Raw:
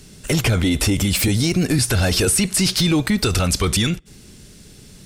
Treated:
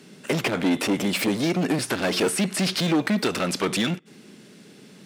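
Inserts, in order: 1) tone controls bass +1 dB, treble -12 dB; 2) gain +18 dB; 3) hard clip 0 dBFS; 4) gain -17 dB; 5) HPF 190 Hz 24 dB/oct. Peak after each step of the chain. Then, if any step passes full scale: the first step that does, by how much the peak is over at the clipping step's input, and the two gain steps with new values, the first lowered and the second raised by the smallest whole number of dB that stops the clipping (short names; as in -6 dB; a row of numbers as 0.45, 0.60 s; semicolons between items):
-8.5, +9.5, 0.0, -17.0, -9.5 dBFS; step 2, 9.5 dB; step 2 +8 dB, step 4 -7 dB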